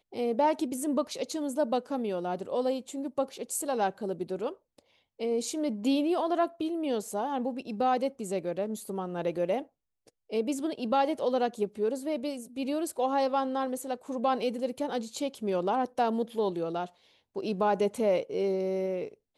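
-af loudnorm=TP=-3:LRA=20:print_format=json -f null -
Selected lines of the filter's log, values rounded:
"input_i" : "-30.7",
"input_tp" : "-15.1",
"input_lra" : "2.2",
"input_thresh" : "-41.0",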